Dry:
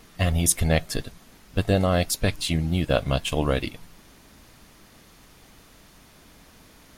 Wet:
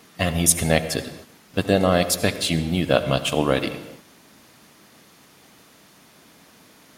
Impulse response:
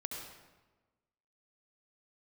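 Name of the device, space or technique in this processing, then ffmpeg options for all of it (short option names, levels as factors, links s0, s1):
keyed gated reverb: -filter_complex "[0:a]asplit=3[s0][s1][s2];[1:a]atrim=start_sample=2205[s3];[s1][s3]afir=irnorm=-1:irlink=0[s4];[s2]apad=whole_len=307672[s5];[s4][s5]sidechaingate=range=0.0224:threshold=0.00447:ratio=16:detection=peak,volume=0.501[s6];[s0][s6]amix=inputs=2:normalize=0,highpass=150,volume=1.19"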